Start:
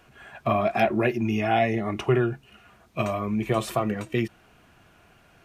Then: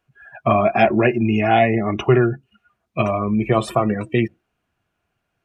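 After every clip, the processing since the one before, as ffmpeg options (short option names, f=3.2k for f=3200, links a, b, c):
-af "afftdn=nr=25:nf=-38,volume=7dB"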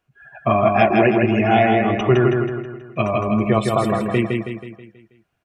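-af "aecho=1:1:161|322|483|644|805|966:0.668|0.314|0.148|0.0694|0.0326|0.0153,volume=-1dB"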